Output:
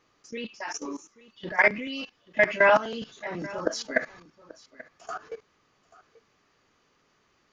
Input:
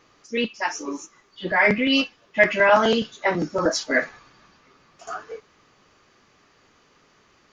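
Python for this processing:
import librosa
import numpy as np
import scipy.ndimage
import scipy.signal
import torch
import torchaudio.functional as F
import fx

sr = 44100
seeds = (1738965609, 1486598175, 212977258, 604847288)

y = fx.level_steps(x, sr, step_db=17)
y = y + 10.0 ** (-20.0 / 20.0) * np.pad(y, (int(835 * sr / 1000.0), 0))[:len(y)]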